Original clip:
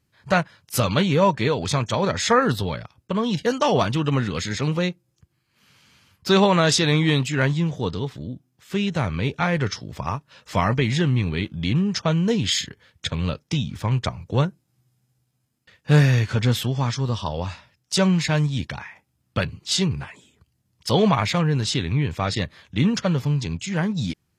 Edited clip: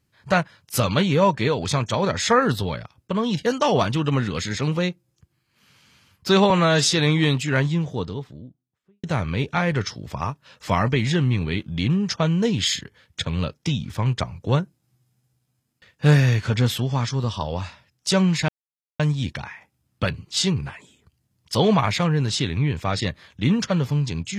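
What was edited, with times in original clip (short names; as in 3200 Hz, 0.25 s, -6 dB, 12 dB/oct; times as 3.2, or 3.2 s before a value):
6.5–6.79 stretch 1.5×
7.48–8.89 studio fade out
18.34 insert silence 0.51 s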